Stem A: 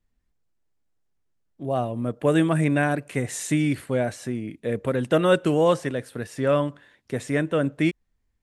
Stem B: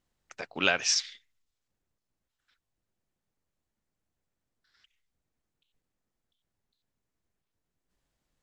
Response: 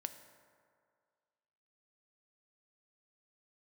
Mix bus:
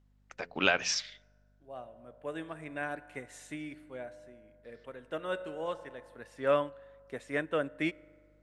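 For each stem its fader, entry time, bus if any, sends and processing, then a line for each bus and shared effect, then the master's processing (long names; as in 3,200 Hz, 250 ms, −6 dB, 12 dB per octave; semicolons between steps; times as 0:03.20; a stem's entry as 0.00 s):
−0.5 dB, 0.00 s, send −10 dB, high-pass filter 770 Hz 6 dB per octave; expander for the loud parts 1.5 to 1, over −42 dBFS; automatic ducking −21 dB, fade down 1.70 s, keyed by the second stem
0.0 dB, 0.00 s, send −19.5 dB, mains hum 50 Hz, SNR 28 dB; hum removal 86.46 Hz, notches 6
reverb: on, RT60 2.1 s, pre-delay 3 ms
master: high-shelf EQ 4,600 Hz −11 dB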